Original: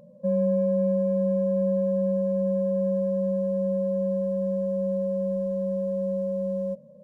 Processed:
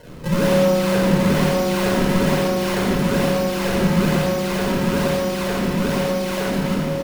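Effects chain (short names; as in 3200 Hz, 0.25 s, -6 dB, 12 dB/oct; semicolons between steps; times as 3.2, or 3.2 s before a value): elliptic low-pass 730 Hz; requantised 8-bit, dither triangular; one-sided clip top -29 dBFS; decimation with a swept rate 35×, swing 160% 1.1 Hz; on a send: echo 0.903 s -7.5 dB; on the sum: shoebox room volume 1900 m³, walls mixed, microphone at 5 m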